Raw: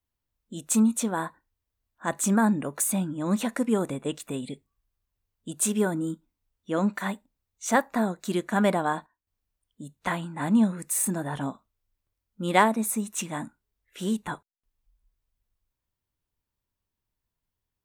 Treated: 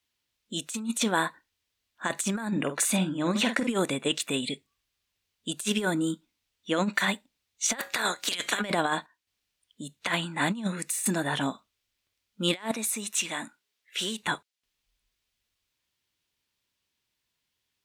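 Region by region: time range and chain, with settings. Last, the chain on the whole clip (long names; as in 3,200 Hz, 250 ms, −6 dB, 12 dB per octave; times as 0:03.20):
0:02.51–0:03.67: low-pass filter 3,500 Hz 6 dB per octave + double-tracking delay 48 ms −10 dB
0:07.78–0:08.60: ceiling on every frequency bin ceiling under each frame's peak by 24 dB + tuned comb filter 110 Hz, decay 0.35 s, harmonics odd, mix 30%
0:12.71–0:14.23: high-pass filter 410 Hz 6 dB per octave + downward compressor 4 to 1, threshold −33 dBFS
whole clip: meter weighting curve D; compressor whose output falls as the input rises −26 dBFS, ratio −0.5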